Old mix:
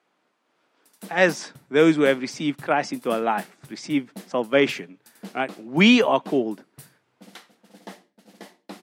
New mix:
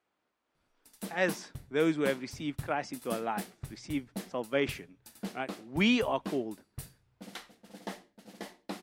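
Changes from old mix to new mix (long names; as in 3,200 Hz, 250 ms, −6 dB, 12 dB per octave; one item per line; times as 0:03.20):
speech −11.0 dB
master: remove high-pass filter 140 Hz 24 dB per octave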